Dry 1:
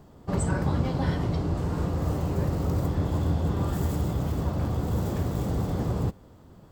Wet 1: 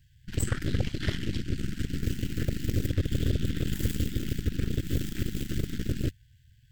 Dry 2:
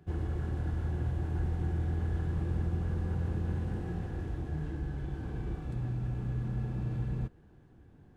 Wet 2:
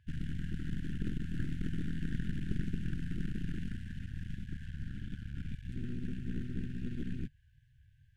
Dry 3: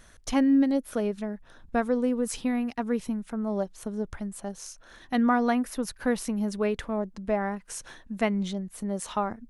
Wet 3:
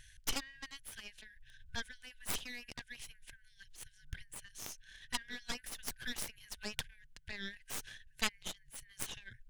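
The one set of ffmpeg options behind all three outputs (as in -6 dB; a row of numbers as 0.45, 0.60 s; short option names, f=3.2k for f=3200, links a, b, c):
-af "equalizer=f=3k:w=3.8:g=6,afftfilt=real='re*(1-between(b*sr/4096,150,1500))':imag='im*(1-between(b*sr/4096,150,1500))':win_size=4096:overlap=0.75,aeval=exprs='0.168*(cos(1*acos(clip(val(0)/0.168,-1,1)))-cos(1*PI/2))+0.00841*(cos(5*acos(clip(val(0)/0.168,-1,1)))-cos(5*PI/2))+0.0473*(cos(7*acos(clip(val(0)/0.168,-1,1)))-cos(7*PI/2))+0.0299*(cos(8*acos(clip(val(0)/0.168,-1,1)))-cos(8*PI/2))':c=same,volume=-1.5dB"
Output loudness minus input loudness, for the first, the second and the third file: -3.5, -5.5, -15.0 LU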